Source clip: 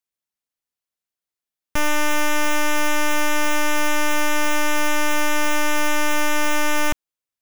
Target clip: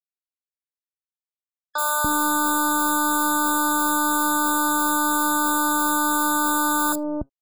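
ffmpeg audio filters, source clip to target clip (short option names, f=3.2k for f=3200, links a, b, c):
-filter_complex "[0:a]highpass=42,highshelf=f=4.8k:g=6.5,bandreject=f=136.2:t=h:w=4,bandreject=f=272.4:t=h:w=4,bandreject=f=408.6:t=h:w=4,bandreject=f=544.8:t=h:w=4,bandreject=f=681:t=h:w=4,bandreject=f=817.2:t=h:w=4,bandreject=f=953.4:t=h:w=4,bandreject=f=1.0896k:t=h:w=4,bandreject=f=1.2258k:t=h:w=4,bandreject=f=1.362k:t=h:w=4,bandreject=f=1.4982k:t=h:w=4,bandreject=f=1.6344k:t=h:w=4,bandreject=f=1.7706k:t=h:w=4,bandreject=f=1.9068k:t=h:w=4,bandreject=f=2.043k:t=h:w=4,bandreject=f=2.1792k:t=h:w=4,bandreject=f=2.3154k:t=h:w=4,bandreject=f=2.4516k:t=h:w=4,bandreject=f=2.5878k:t=h:w=4,bandreject=f=2.724k:t=h:w=4,bandreject=f=2.8602k:t=h:w=4,bandreject=f=2.9964k:t=h:w=4,bandreject=f=3.1326k:t=h:w=4,bandreject=f=3.2688k:t=h:w=4,bandreject=f=3.405k:t=h:w=4,bandreject=f=3.5412k:t=h:w=4,bandreject=f=3.6774k:t=h:w=4,bandreject=f=3.8136k:t=h:w=4,bandreject=f=3.9498k:t=h:w=4,bandreject=f=4.086k:t=h:w=4,bandreject=f=4.2222k:t=h:w=4,bandreject=f=4.3584k:t=h:w=4,bandreject=f=4.4946k:t=h:w=4,bandreject=f=4.6308k:t=h:w=4,bandreject=f=4.767k:t=h:w=4,bandreject=f=4.9032k:t=h:w=4,bandreject=f=5.0394k:t=h:w=4,bandreject=f=5.1756k:t=h:w=4,bandreject=f=5.3118k:t=h:w=4,bandreject=f=5.448k:t=h:w=4,acontrast=29,acrusher=bits=6:mix=0:aa=0.000001,aeval=exprs='sgn(val(0))*max(abs(val(0))-0.0224,0)':c=same,acrossover=split=630|4900[a][b][c];[c]adelay=30[d];[a]adelay=290[e];[e][b][d]amix=inputs=3:normalize=0,afftfilt=real='re*eq(mod(floor(b*sr/1024/1700),2),0)':imag='im*eq(mod(floor(b*sr/1024/1700),2),0)':win_size=1024:overlap=0.75"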